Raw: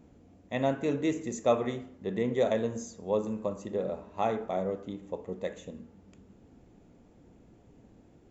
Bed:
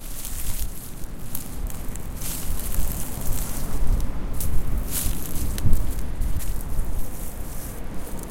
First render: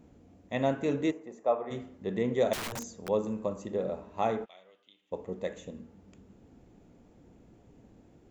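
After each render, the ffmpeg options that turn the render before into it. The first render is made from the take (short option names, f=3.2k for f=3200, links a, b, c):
-filter_complex "[0:a]asplit=3[a][b][c];[a]afade=t=out:st=1.1:d=0.02[d];[b]bandpass=f=780:t=q:w=1.4,afade=t=in:st=1.1:d=0.02,afade=t=out:st=1.7:d=0.02[e];[c]afade=t=in:st=1.7:d=0.02[f];[d][e][f]amix=inputs=3:normalize=0,asettb=1/sr,asplit=3[g][h][i];[g]atrim=end=2.534[j];[h]atrim=start=2.53:end=3.09,asetpts=PTS-STARTPTS,afade=t=in:d=0.004:c=qsin,afade=t=out:st=0.556:d=0.004:c=qsin,aeval=exprs='(mod(37.6*val(0)+1,2)-1)/37.6':c=same[k];[i]atrim=start=3.086[l];[j][k]acrossfade=d=0.004:c1=hsin:c2=qsin[m];[m][l]acrossfade=d=0.004:c1=qsin:c2=hsin,asplit=3[n][o][p];[n]afade=t=out:st=4.44:d=0.02[q];[o]bandpass=f=3.1k:t=q:w=3.7,afade=t=in:st=4.44:d=0.02,afade=t=out:st=5.11:d=0.02[r];[p]afade=t=in:st=5.11:d=0.02[s];[q][r][s]amix=inputs=3:normalize=0"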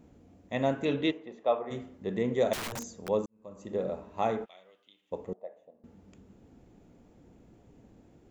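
-filter_complex "[0:a]asettb=1/sr,asplit=3[a][b][c];[a]atrim=end=0.854[d];[b]atrim=start=0.85:end=1.59,asetpts=PTS-STARTPTS,afade=t=in:d=0.004:c=qsin,afade=t=out:st=0.736:d=0.004:c=qsin,lowpass=f=3.4k:t=q:w=4.3[e];[c]atrim=start=1.586[f];[d][e]acrossfade=d=0.004:c1=hsin:c2=qsin[g];[g][f]acrossfade=d=0.004:c1=qsin:c2=hsin,asettb=1/sr,asplit=3[h][i][j];[h]atrim=end=5.334[k];[i]atrim=start=5.33:end=5.84,asetpts=PTS-STARTPTS,afade=t=in:d=0.004:c=qsin,afade=t=out:st=0.506:d=0.004:c=qsin,bandpass=f=680:t=q:w=5.3[l];[j]atrim=start=5.836[m];[k][l]acrossfade=d=0.004:c1=hsin:c2=qsin[n];[n][m]acrossfade=d=0.004:c1=qsin:c2=hsin,asplit=2[o][p];[o]atrim=end=3.26,asetpts=PTS-STARTPTS,afade=t=out:st=3.256:d=0.004:c=hsin[q];[p]atrim=start=3.26,asetpts=PTS-STARTPTS,afade=t=in:d=0.49:c=qua[r];[q][r]concat=n=2:v=0:a=1"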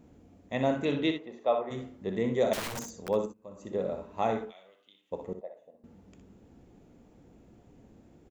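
-af "aecho=1:1:62|76:0.376|0.141"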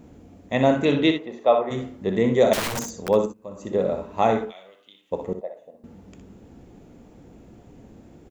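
-af "volume=9dB"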